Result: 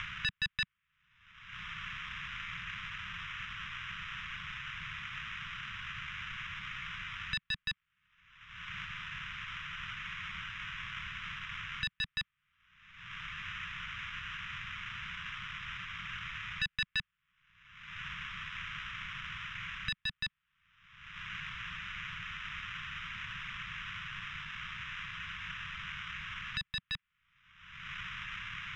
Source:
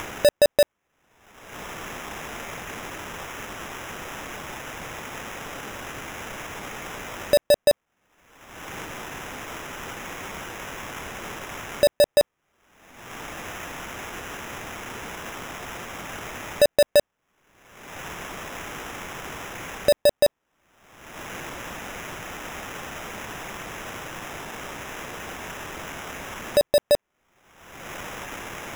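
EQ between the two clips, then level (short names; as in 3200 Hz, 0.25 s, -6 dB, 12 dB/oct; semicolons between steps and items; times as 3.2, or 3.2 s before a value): inverse Chebyshev band-stop 270–770 Hz, stop band 40 dB; ladder low-pass 3900 Hz, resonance 35%; +2.0 dB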